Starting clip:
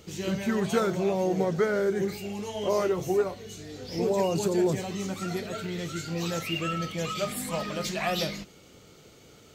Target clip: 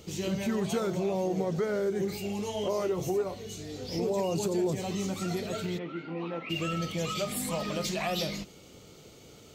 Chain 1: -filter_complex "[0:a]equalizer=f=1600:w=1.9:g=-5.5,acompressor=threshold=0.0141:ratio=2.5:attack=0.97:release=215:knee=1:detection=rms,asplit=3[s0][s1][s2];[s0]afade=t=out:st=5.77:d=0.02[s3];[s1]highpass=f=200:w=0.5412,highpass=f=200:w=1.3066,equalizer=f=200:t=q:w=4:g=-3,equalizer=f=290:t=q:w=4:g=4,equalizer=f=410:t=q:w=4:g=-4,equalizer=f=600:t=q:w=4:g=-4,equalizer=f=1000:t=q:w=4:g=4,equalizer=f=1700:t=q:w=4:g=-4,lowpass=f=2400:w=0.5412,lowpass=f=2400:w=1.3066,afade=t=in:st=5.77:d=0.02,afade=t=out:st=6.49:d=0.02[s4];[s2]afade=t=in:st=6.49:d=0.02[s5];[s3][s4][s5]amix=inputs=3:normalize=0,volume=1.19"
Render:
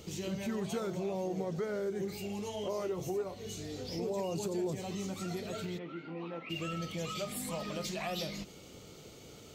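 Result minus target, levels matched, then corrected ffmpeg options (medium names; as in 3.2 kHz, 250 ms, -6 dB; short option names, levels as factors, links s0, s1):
compression: peak gain reduction +6 dB
-filter_complex "[0:a]equalizer=f=1600:w=1.9:g=-5.5,acompressor=threshold=0.0447:ratio=2.5:attack=0.97:release=215:knee=1:detection=rms,asplit=3[s0][s1][s2];[s0]afade=t=out:st=5.77:d=0.02[s3];[s1]highpass=f=200:w=0.5412,highpass=f=200:w=1.3066,equalizer=f=200:t=q:w=4:g=-3,equalizer=f=290:t=q:w=4:g=4,equalizer=f=410:t=q:w=4:g=-4,equalizer=f=600:t=q:w=4:g=-4,equalizer=f=1000:t=q:w=4:g=4,equalizer=f=1700:t=q:w=4:g=-4,lowpass=f=2400:w=0.5412,lowpass=f=2400:w=1.3066,afade=t=in:st=5.77:d=0.02,afade=t=out:st=6.49:d=0.02[s4];[s2]afade=t=in:st=6.49:d=0.02[s5];[s3][s4][s5]amix=inputs=3:normalize=0,volume=1.19"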